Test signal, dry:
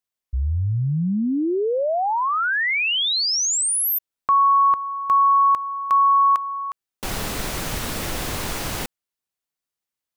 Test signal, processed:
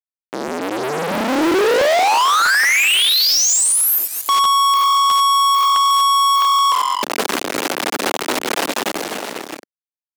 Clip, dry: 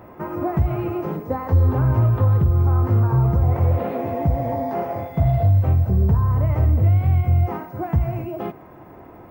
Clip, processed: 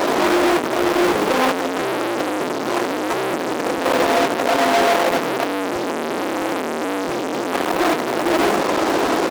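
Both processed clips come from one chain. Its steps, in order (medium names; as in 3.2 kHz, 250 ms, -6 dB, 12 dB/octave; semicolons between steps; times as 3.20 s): hum notches 60/120/180/240/300/360/420/480 Hz; frequency-shifting echo 229 ms, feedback 38%, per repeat -44 Hz, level -20.5 dB; compression 5:1, threshold -31 dBFS; gated-style reverb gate 110 ms rising, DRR 4 dB; upward compressor, threshold -47 dBFS; tilt EQ -2.5 dB/octave; fuzz box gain 51 dB, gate -50 dBFS; high-pass 280 Hz 24 dB/octave; crackling interface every 0.66 s, samples 512, repeat, from 0.47 s; loudspeaker Doppler distortion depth 0.29 ms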